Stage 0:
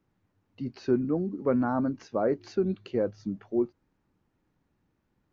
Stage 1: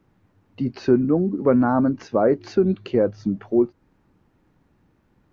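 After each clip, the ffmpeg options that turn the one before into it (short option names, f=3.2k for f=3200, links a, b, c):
-filter_complex "[0:a]highshelf=f=3.8k:g=-7,asplit=2[a][b];[b]acompressor=threshold=-35dB:ratio=6,volume=-1dB[c];[a][c]amix=inputs=2:normalize=0,volume=6.5dB"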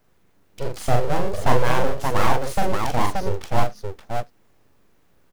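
-af "aeval=exprs='abs(val(0))':c=same,crystalizer=i=2.5:c=0,aecho=1:1:41|86|577:0.668|0.106|0.668,volume=-1dB"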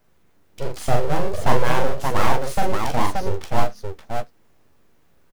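-filter_complex "[0:a]asplit=2[a][b];[b]adelay=13,volume=-10.5dB[c];[a][c]amix=inputs=2:normalize=0"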